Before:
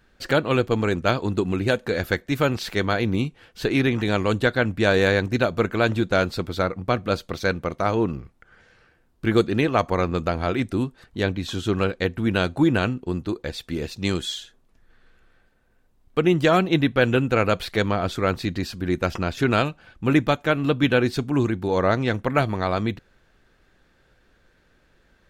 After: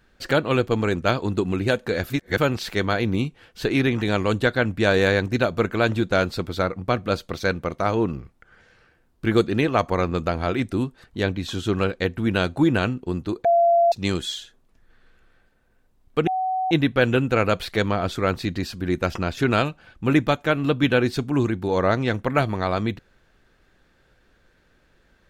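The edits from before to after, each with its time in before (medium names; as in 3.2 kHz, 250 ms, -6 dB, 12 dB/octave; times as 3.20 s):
2.10–2.38 s: reverse
13.45–13.92 s: bleep 684 Hz -13.5 dBFS
16.27–16.71 s: bleep 750 Hz -21 dBFS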